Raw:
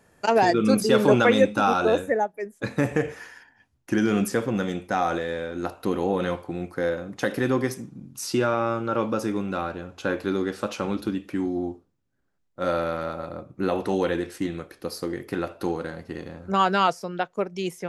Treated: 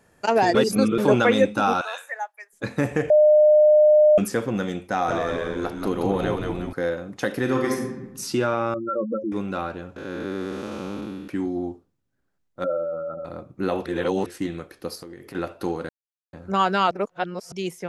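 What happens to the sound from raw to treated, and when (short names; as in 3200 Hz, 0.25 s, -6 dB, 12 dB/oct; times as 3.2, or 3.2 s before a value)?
0.55–0.98 reverse
1.81–2.53 inverse Chebyshev high-pass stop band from 200 Hz, stop band 70 dB
3.1–4.18 bleep 606 Hz -11 dBFS
4.9–6.73 frequency-shifting echo 0.179 s, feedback 47%, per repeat -75 Hz, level -4 dB
7.43–8.05 reverb throw, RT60 1 s, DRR 0 dB
8.74–9.32 spectral contrast raised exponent 3.9
9.96–11.28 time blur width 0.406 s
12.64–13.25 spectral contrast raised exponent 2.5
13.86–14.26 reverse
14.95–15.35 compressor 5:1, threshold -37 dBFS
15.89–16.33 mute
16.91–17.52 reverse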